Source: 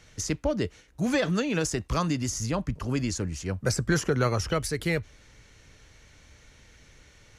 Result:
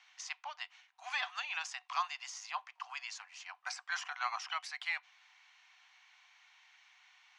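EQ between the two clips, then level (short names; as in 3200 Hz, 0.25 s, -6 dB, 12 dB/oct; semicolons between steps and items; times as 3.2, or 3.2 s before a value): rippled Chebyshev high-pass 720 Hz, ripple 6 dB; air absorption 120 m; high shelf 10000 Hz -4 dB; 0.0 dB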